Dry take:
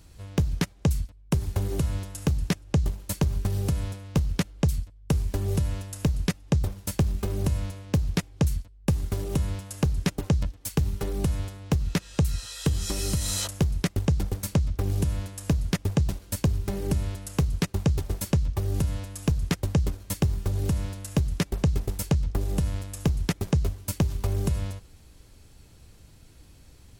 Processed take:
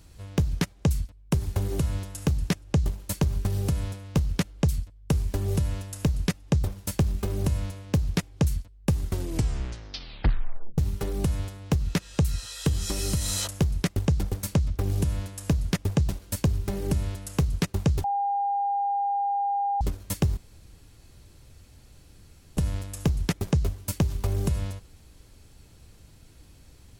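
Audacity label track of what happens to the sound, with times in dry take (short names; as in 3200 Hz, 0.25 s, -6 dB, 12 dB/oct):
9.040000	9.040000	tape stop 1.74 s
18.040000	19.810000	bleep 804 Hz -23 dBFS
20.370000	22.570000	room tone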